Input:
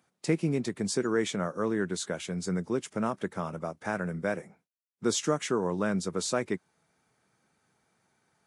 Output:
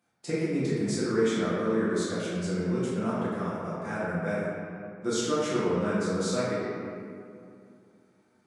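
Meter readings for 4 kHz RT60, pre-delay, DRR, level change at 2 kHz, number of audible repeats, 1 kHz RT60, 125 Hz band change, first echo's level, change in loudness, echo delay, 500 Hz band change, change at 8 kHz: 1.3 s, 6 ms, -9.5 dB, +1.0 dB, no echo, 2.3 s, +2.5 dB, no echo, +1.5 dB, no echo, +2.5 dB, -2.5 dB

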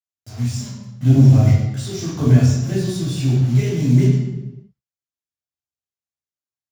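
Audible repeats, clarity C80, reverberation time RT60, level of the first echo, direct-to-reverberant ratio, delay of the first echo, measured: no echo, 4.0 dB, 1.1 s, no echo, -7.5 dB, no echo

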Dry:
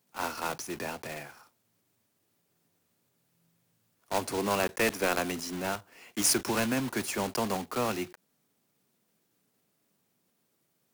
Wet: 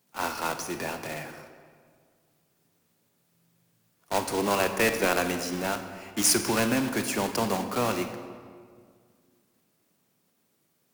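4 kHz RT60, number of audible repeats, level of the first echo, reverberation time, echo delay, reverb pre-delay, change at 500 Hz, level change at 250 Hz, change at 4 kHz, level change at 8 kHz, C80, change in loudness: 1.2 s, no echo, no echo, 2.0 s, no echo, 26 ms, +4.0 dB, +4.0 dB, +3.5 dB, +3.5 dB, 9.5 dB, +3.5 dB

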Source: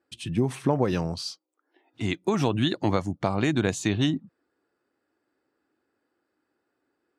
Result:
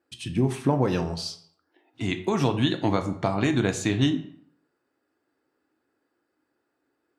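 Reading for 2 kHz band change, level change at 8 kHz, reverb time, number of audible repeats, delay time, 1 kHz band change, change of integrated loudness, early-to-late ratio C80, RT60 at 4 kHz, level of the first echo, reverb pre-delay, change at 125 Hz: +1.0 dB, +0.5 dB, 0.65 s, no echo, no echo, +1.0 dB, +1.0 dB, 15.0 dB, 0.45 s, no echo, 3 ms, +1.5 dB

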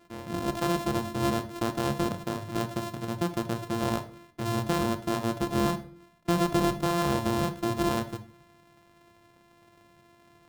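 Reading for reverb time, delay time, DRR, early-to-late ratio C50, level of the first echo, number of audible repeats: 0.55 s, no echo, 9.0 dB, 13.5 dB, no echo, no echo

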